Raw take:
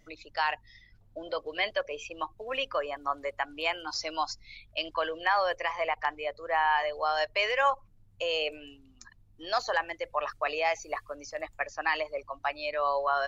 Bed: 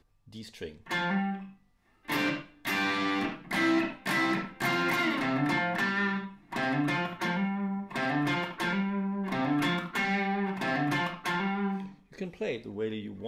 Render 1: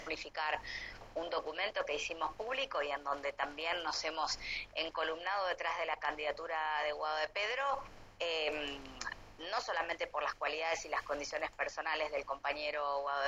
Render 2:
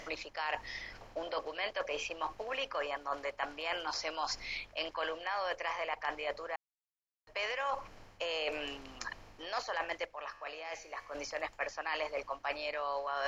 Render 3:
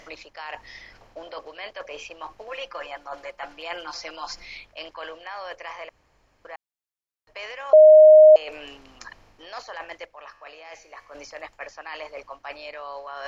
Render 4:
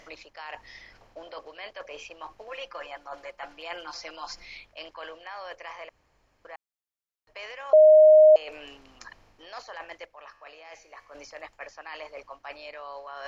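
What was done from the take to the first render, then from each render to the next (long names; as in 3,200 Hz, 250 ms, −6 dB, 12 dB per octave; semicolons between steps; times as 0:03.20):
compressor on every frequency bin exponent 0.6; reversed playback; downward compressor 5 to 1, threshold −34 dBFS, peak gain reduction 14.5 dB; reversed playback
0:06.56–0:07.27: silence; 0:10.05–0:11.15: tuned comb filter 79 Hz, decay 1.2 s
0:02.47–0:04.45: comb filter 5.8 ms, depth 77%; 0:05.89–0:06.45: fill with room tone; 0:07.73–0:08.36: beep over 619 Hz −6.5 dBFS
level −4 dB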